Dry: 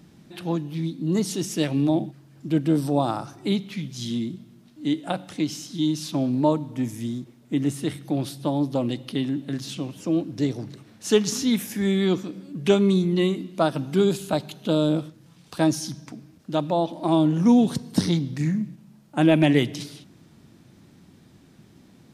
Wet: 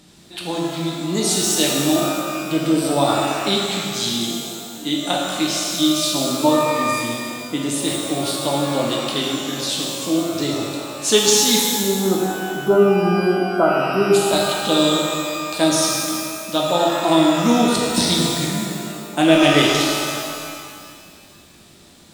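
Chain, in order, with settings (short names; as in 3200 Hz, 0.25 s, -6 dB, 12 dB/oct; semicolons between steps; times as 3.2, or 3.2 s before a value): graphic EQ 125/250/4000/8000 Hz -10/-3/+10/+12 dB; spectral delete 11.62–14.14, 1500–11000 Hz; bell 5600 Hz -6 dB 1.4 oct; shimmer reverb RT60 2.2 s, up +12 st, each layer -8 dB, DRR -2.5 dB; gain +3 dB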